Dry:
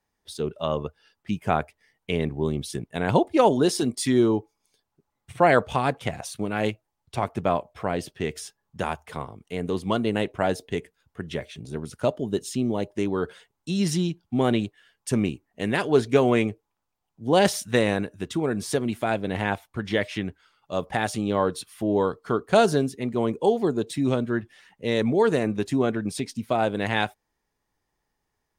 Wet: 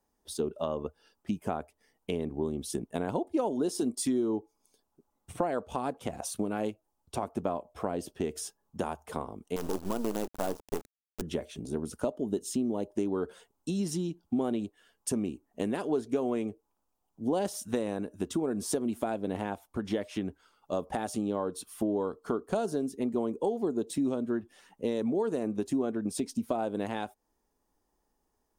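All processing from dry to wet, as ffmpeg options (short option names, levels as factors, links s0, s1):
-filter_complex "[0:a]asettb=1/sr,asplit=3[s0][s1][s2];[s0]atrim=end=9.564[s3];[s1]atrim=start=9.56:end=11.22,asetpts=PTS-STARTPTS,afade=t=in:d=0.004:c=qsin,afade=t=out:st=1.656:d=0.004:c=qsin,lowpass=2500,acrusher=bits=4:dc=4:mix=0:aa=0.000001,asoftclip=type=hard:threshold=0.126[s4];[s2]atrim=start=11.216[s5];[s3][s4]acrossfade=d=0.004:c1=hsin:c2=qsin[s6];[s6][s5]acrossfade=d=0.004:c1=qsin:c2=hsin,acompressor=threshold=0.0316:ratio=6,equalizer=f=125:t=o:w=1:g=-11,equalizer=f=250:t=o:w=1:g=4,equalizer=f=2000:t=o:w=1:g=-11,equalizer=f=4000:t=o:w=1:g=-6,volume=1.41"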